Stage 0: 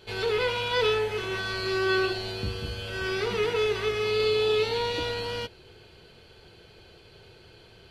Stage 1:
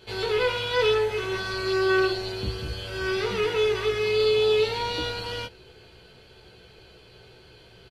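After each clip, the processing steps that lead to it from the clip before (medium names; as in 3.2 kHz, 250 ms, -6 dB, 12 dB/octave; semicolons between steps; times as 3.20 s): doubling 16 ms -4.5 dB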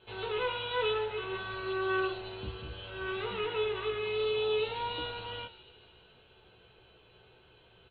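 rippled Chebyshev low-pass 4 kHz, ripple 6 dB; flange 0.59 Hz, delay 7.9 ms, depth 5.9 ms, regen +88%; feedback echo behind a high-pass 148 ms, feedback 68%, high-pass 3.1 kHz, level -12.5 dB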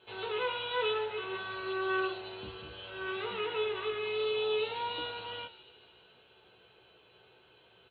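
high-pass 250 Hz 6 dB/octave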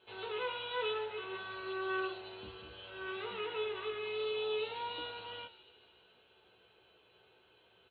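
peaking EQ 140 Hz -6.5 dB 0.34 oct; trim -4.5 dB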